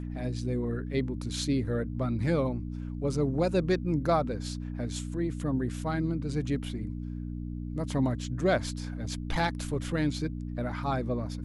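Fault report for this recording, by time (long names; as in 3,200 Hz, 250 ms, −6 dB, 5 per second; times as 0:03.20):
mains hum 60 Hz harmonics 5 −36 dBFS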